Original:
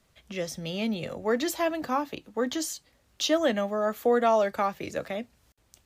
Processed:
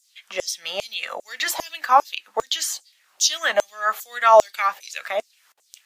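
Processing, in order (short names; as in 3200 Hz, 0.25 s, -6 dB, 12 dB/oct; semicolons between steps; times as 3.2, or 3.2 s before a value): LFO high-pass saw down 2.5 Hz 620–7600 Hz; gain +8 dB; AAC 96 kbps 44100 Hz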